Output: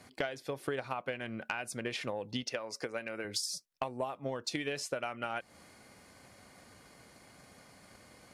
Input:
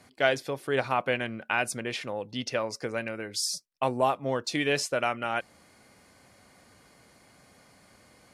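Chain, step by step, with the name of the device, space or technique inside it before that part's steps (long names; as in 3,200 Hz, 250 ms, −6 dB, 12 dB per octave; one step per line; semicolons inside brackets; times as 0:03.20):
drum-bus smash (transient designer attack +7 dB, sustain +1 dB; downward compressor 10 to 1, threshold −32 dBFS, peak gain reduction 19 dB; soft clipping −19 dBFS, distortion −24 dB)
0:02.43–0:03.25: high-pass filter 290 Hz 6 dB per octave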